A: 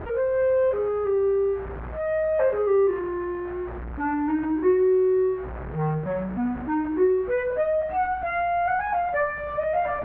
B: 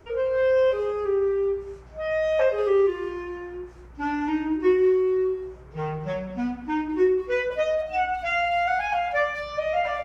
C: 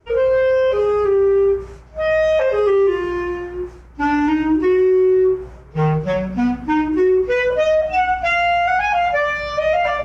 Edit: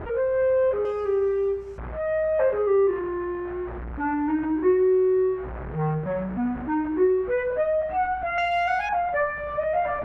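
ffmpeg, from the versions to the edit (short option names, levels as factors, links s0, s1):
-filter_complex "[1:a]asplit=2[s0][s1];[0:a]asplit=3[s2][s3][s4];[s2]atrim=end=0.852[s5];[s0]atrim=start=0.848:end=1.782[s6];[s3]atrim=start=1.778:end=8.382[s7];[s1]atrim=start=8.378:end=8.892[s8];[s4]atrim=start=8.888[s9];[s5][s6]acrossfade=d=0.004:c1=hsin:c2=hsin[s10];[s10][s7]acrossfade=d=0.004:c1=hsin:c2=hsin[s11];[s11][s8]acrossfade=d=0.004:c1=hsin:c2=hsin[s12];[s12][s9]acrossfade=d=0.004:c1=hsin:c2=hsin"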